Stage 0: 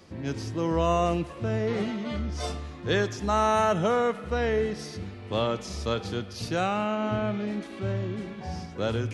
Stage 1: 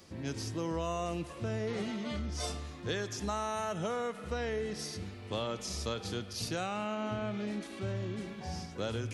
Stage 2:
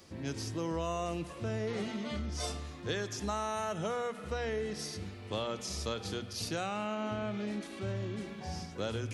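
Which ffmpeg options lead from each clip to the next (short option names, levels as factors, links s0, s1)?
-af "highshelf=f=4800:g=11,acompressor=threshold=0.0501:ratio=6,volume=0.562"
-af "bandreject=f=60:t=h:w=6,bandreject=f=120:t=h:w=6,bandreject=f=180:t=h:w=6,bandreject=f=240:t=h:w=6"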